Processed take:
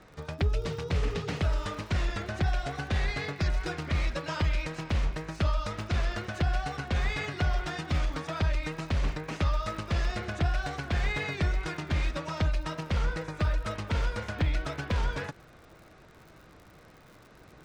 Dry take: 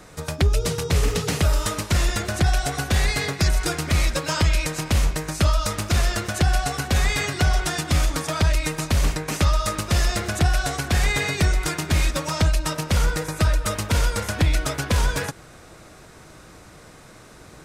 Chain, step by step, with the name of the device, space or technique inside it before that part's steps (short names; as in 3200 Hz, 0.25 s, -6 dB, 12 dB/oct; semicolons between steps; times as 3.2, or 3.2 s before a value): lo-fi chain (LPF 3600 Hz 12 dB/oct; wow and flutter; crackle 94/s -37 dBFS); gain -8 dB